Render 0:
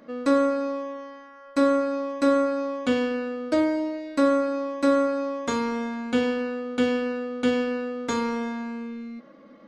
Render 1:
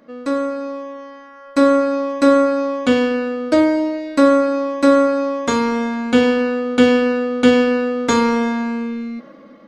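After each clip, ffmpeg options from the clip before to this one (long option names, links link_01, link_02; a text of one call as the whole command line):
ffmpeg -i in.wav -af "dynaudnorm=framelen=460:gausssize=5:maxgain=13dB" out.wav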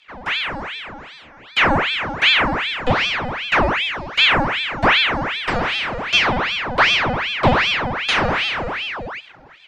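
ffmpeg -i in.wav -filter_complex "[0:a]acrossover=split=4300[link_01][link_02];[link_02]acompressor=threshold=-52dB:ratio=4:attack=1:release=60[link_03];[link_01][link_03]amix=inputs=2:normalize=0,aeval=exprs='val(0)*sin(2*PI*1600*n/s+1600*0.85/2.6*sin(2*PI*2.6*n/s))':channel_layout=same" out.wav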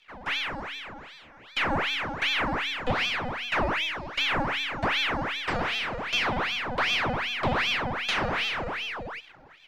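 ffmpeg -i in.wav -af "aeval=exprs='if(lt(val(0),0),0.708*val(0),val(0))':channel_layout=same,alimiter=limit=-9dB:level=0:latency=1:release=113,volume=-6dB" out.wav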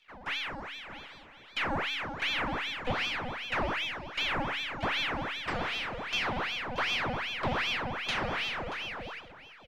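ffmpeg -i in.wav -af "aecho=1:1:630:0.188,volume=-5dB" out.wav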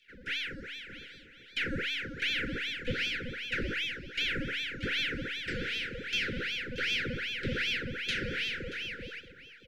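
ffmpeg -i in.wav -af "asuperstop=centerf=870:order=20:qfactor=1" out.wav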